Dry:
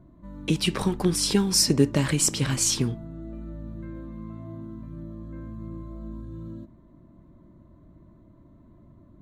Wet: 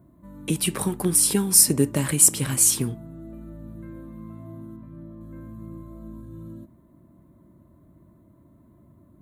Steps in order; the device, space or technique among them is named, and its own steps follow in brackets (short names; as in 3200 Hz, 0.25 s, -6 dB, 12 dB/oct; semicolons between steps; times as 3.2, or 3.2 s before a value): budget condenser microphone (HPF 64 Hz; resonant high shelf 7600 Hz +13.5 dB, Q 1.5); 4.76–5.21 tone controls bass -2 dB, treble -11 dB; gain -1 dB